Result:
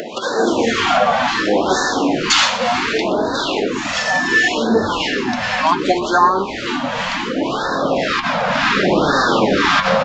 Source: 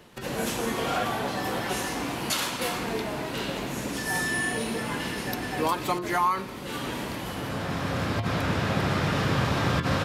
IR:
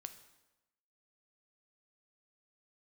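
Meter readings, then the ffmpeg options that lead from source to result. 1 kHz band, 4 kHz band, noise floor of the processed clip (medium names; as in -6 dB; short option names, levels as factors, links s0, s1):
+12.5 dB, +13.0 dB, -24 dBFS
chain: -filter_complex "[0:a]asplit=2[s0][s1];[s1]adynamicsmooth=sensitivity=5.5:basefreq=4900,volume=1.06[s2];[s0][s2]amix=inputs=2:normalize=0,aresample=16000,aresample=44100,highpass=f=240:w=0.5412,highpass=f=240:w=1.3066,flanger=delay=1.5:depth=9.5:regen=43:speed=0.25:shape=sinusoidal,acrossover=split=890[s3][s4];[s3]aeval=exprs='val(0)*(1-0.7/2+0.7/2*cos(2*PI*1.9*n/s))':c=same[s5];[s4]aeval=exprs='val(0)*(1-0.7/2-0.7/2*cos(2*PI*1.9*n/s))':c=same[s6];[s5][s6]amix=inputs=2:normalize=0,asplit=4[s7][s8][s9][s10];[s8]adelay=124,afreqshift=-130,volume=0.178[s11];[s9]adelay=248,afreqshift=-260,volume=0.0624[s12];[s10]adelay=372,afreqshift=-390,volume=0.0219[s13];[s7][s11][s12][s13]amix=inputs=4:normalize=0,acompressor=mode=upward:threshold=0.0251:ratio=2.5,alimiter=level_in=6.68:limit=0.891:release=50:level=0:latency=1,afftfilt=real='re*(1-between(b*sr/1024,330*pow(2600/330,0.5+0.5*sin(2*PI*0.68*pts/sr))/1.41,330*pow(2600/330,0.5+0.5*sin(2*PI*0.68*pts/sr))*1.41))':imag='im*(1-between(b*sr/1024,330*pow(2600/330,0.5+0.5*sin(2*PI*0.68*pts/sr))/1.41,330*pow(2600/330,0.5+0.5*sin(2*PI*0.68*pts/sr))*1.41))':win_size=1024:overlap=0.75,volume=0.891"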